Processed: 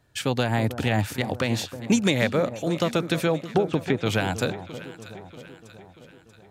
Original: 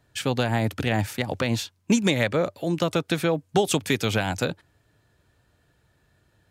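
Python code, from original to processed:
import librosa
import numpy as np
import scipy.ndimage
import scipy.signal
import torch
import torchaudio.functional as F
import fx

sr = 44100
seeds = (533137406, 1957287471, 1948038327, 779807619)

y = fx.env_lowpass_down(x, sr, base_hz=610.0, full_db=-16.5, at=(3.5, 4.05), fade=0.02)
y = fx.echo_alternate(y, sr, ms=318, hz=1100.0, feedback_pct=71, wet_db=-11.5)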